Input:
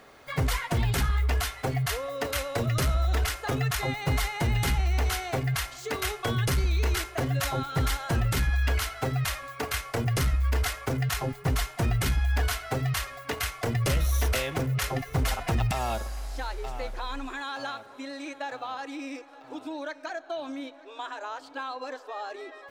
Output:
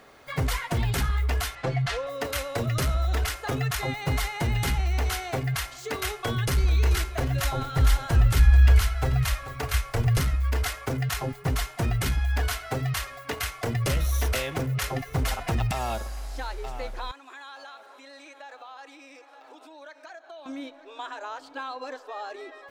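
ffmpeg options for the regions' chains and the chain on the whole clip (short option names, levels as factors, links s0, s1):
-filter_complex "[0:a]asettb=1/sr,asplit=3[s0][s1][s2];[s0]atrim=end=1.554[s3];[s1]atrim=start=1.55:end=2.07,asetpts=PTS-STARTPTS,afade=t=in:d=0.004:c=qsin,afade=t=out:st=0.516:d=0.004:c=qsin,lowpass=5000,aecho=1:1:5.9:0.63,atrim=end_sample=22932[s4];[s2]atrim=start=2.066[s5];[s3][s4]acrossfade=d=0.004:c1=hsin:c2=qsin[s6];[s6][s5]acrossfade=d=0.004:c1=qsin:c2=hsin,asettb=1/sr,asplit=3[s7][s8][s9];[s7]atrim=end=6.114[s10];[s8]atrim=start=6.11:end=10.2,asetpts=PTS-STARTPTS,afade=t=in:d=0.004:c=qsin,afade=t=out:st=4.086:d=0.004:c=qsin,asubboost=boost=7:cutoff=86,aecho=1:1:436:0.211,atrim=end_sample=180369[s11];[s9]atrim=start=10.196[s12];[s10][s11]acrossfade=d=0.004:c1=hsin:c2=qsin[s13];[s13][s12]acrossfade=d=0.004:c1=qsin:c2=hsin,asettb=1/sr,asplit=3[s14][s15][s16];[s14]atrim=end=17.114[s17];[s15]atrim=start=17.11:end=20.46,asetpts=PTS-STARTPTS,afade=t=in:d=0.004:c=qsin,afade=t=out:st=3.346:d=0.004:c=qsin,acompressor=threshold=0.00794:ratio=3:attack=3.2:release=140:knee=1:detection=peak,highpass=480[s18];[s16]atrim=start=20.456[s19];[s17][s18]acrossfade=d=0.004:c1=hsin:c2=qsin[s20];[s20][s19]acrossfade=d=0.004:c1=qsin:c2=hsin"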